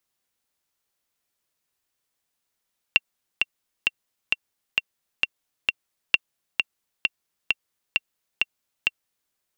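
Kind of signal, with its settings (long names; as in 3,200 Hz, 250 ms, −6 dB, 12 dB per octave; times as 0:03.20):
click track 132 BPM, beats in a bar 7, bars 2, 2,740 Hz, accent 4.5 dB −2 dBFS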